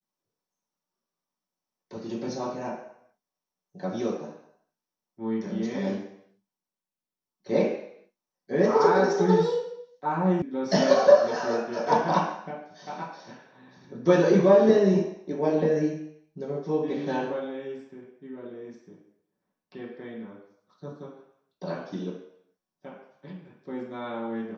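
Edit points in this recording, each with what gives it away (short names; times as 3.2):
10.42 sound cut off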